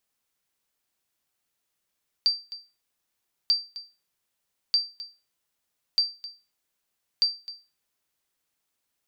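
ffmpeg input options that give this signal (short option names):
-f lavfi -i "aevalsrc='0.2*(sin(2*PI*4680*mod(t,1.24))*exp(-6.91*mod(t,1.24)/0.3)+0.15*sin(2*PI*4680*max(mod(t,1.24)-0.26,0))*exp(-6.91*max(mod(t,1.24)-0.26,0)/0.3))':d=6.2:s=44100"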